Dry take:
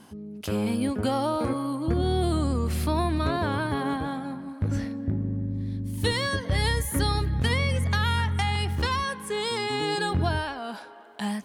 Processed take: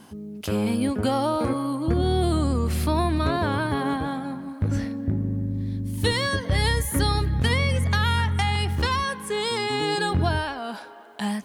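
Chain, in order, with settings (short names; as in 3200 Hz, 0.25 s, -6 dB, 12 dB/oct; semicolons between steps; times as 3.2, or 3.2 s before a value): bit-crush 12-bit; gain +2.5 dB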